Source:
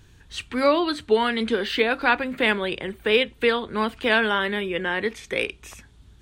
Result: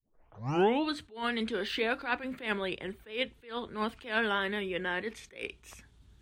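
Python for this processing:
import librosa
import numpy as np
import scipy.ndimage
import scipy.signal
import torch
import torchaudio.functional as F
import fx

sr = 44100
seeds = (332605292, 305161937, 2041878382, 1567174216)

y = fx.tape_start_head(x, sr, length_s=0.92)
y = fx.vibrato(y, sr, rate_hz=6.2, depth_cents=33.0)
y = fx.attack_slew(y, sr, db_per_s=160.0)
y = y * 10.0 ** (-7.5 / 20.0)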